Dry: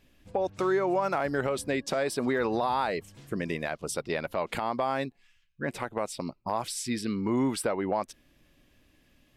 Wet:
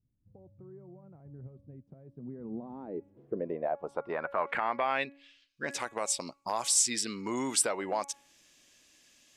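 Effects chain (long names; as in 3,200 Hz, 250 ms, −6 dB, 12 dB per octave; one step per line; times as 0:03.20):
RIAA equalisation recording
hum removal 280 Hz, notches 9
dynamic equaliser 4,800 Hz, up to −5 dB, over −51 dBFS, Q 1.2
low-pass filter sweep 120 Hz → 6,800 Hz, 0:02.03–0:05.87
level −1.5 dB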